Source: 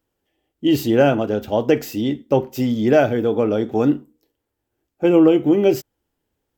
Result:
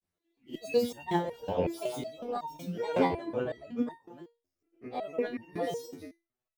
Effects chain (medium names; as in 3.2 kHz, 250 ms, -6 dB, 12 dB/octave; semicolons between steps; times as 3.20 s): reverse spectral sustain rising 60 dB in 0.43 s; reverb removal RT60 0.68 s; delay 303 ms -14 dB; granulator, pitch spread up and down by 7 st; resonator arpeggio 5.4 Hz 89–910 Hz